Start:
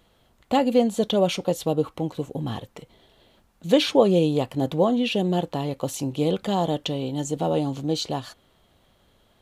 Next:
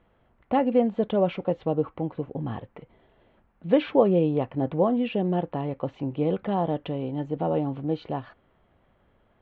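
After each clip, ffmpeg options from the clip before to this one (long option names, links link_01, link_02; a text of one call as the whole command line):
ffmpeg -i in.wav -af "lowpass=frequency=2300:width=0.5412,lowpass=frequency=2300:width=1.3066,volume=-2dB" out.wav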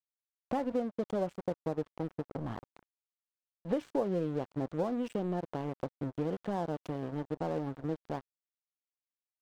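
ffmpeg -i in.wav -af "aeval=exprs='sgn(val(0))*max(abs(val(0))-0.0188,0)':channel_layout=same,acompressor=threshold=-33dB:ratio=2.5,equalizer=frequency=2600:width_type=o:width=0.89:gain=-4.5" out.wav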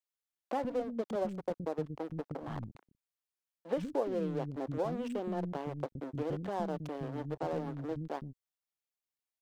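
ffmpeg -i in.wav -filter_complex "[0:a]acrossover=split=260[link_01][link_02];[link_01]adelay=120[link_03];[link_03][link_02]amix=inputs=2:normalize=0" out.wav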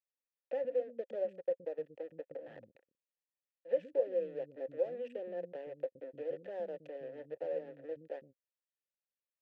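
ffmpeg -i in.wav -filter_complex "[0:a]asplit=3[link_01][link_02][link_03];[link_01]bandpass=frequency=530:width_type=q:width=8,volume=0dB[link_04];[link_02]bandpass=frequency=1840:width_type=q:width=8,volume=-6dB[link_05];[link_03]bandpass=frequency=2480:width_type=q:width=8,volume=-9dB[link_06];[link_04][link_05][link_06]amix=inputs=3:normalize=0,volume=4.5dB" out.wav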